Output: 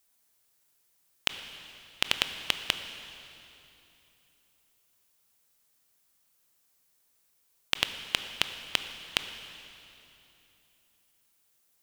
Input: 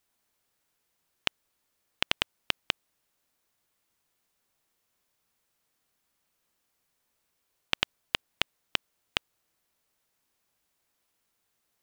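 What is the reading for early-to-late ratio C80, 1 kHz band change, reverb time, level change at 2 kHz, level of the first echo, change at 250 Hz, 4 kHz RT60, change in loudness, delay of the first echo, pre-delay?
9.5 dB, −0.5 dB, 3.0 s, +1.0 dB, no echo audible, −0.5 dB, 2.8 s, +1.0 dB, no echo audible, 19 ms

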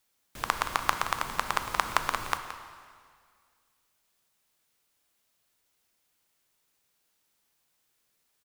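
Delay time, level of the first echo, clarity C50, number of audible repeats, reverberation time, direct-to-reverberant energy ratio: 172 ms, −12.0 dB, 7.5 dB, 1, 2.0 s, 6.5 dB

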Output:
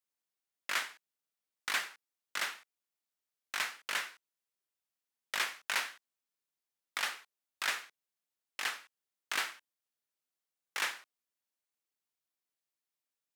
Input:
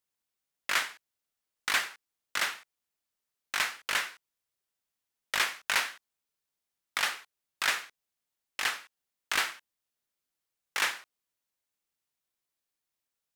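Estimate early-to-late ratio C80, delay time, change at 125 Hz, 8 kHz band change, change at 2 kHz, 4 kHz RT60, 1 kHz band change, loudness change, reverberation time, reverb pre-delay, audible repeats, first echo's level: no reverb audible, no echo audible, can't be measured, −5.5 dB, −5.5 dB, no reverb audible, −5.5 dB, −5.5 dB, no reverb audible, no reverb audible, no echo audible, no echo audible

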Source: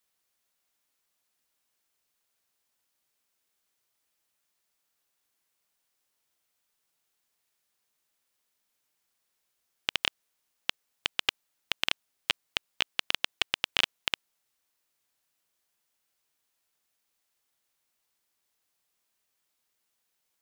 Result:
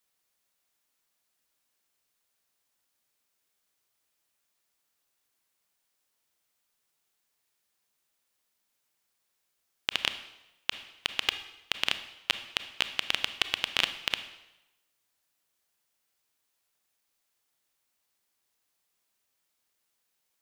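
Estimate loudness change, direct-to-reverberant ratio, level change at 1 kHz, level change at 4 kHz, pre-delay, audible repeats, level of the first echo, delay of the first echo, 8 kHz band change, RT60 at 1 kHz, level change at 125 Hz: +0.5 dB, 10.0 dB, +0.5 dB, +0.5 dB, 22 ms, no echo audible, no echo audible, no echo audible, +0.5 dB, 0.95 s, +0.5 dB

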